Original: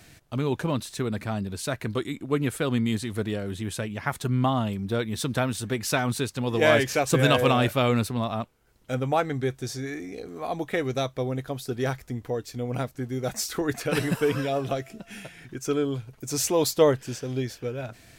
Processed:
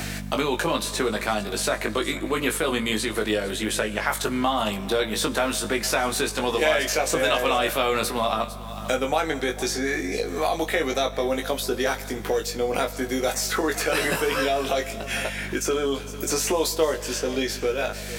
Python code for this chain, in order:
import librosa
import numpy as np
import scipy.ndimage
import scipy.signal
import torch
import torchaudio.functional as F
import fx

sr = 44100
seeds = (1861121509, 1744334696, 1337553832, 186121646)

p1 = scipy.signal.sosfilt(scipy.signal.butter(2, 420.0, 'highpass', fs=sr, output='sos'), x)
p2 = fx.over_compress(p1, sr, threshold_db=-32.0, ratio=-1.0)
p3 = p1 + F.gain(torch.from_numpy(p2), -1.0).numpy()
p4 = fx.add_hum(p3, sr, base_hz=50, snr_db=15)
p5 = fx.quant_dither(p4, sr, seeds[0], bits=12, dither='none')
p6 = fx.doubler(p5, sr, ms=19.0, db=-4.0)
p7 = p6 + fx.echo_single(p6, sr, ms=450, db=-21.0, dry=0)
p8 = fx.rev_fdn(p7, sr, rt60_s=1.4, lf_ratio=1.0, hf_ratio=0.85, size_ms=90.0, drr_db=14.0)
y = fx.band_squash(p8, sr, depth_pct=70)